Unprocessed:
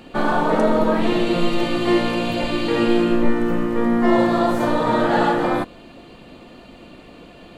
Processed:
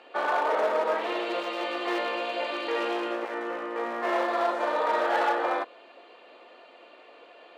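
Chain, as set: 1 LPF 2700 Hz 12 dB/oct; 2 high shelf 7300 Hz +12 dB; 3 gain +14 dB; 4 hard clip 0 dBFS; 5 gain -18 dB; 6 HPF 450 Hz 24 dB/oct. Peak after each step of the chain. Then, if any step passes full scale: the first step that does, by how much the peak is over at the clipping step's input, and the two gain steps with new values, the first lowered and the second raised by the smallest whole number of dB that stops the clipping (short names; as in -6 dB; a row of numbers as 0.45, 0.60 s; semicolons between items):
-4.5, -4.5, +9.5, 0.0, -18.0, -14.5 dBFS; step 3, 9.5 dB; step 3 +4 dB, step 5 -8 dB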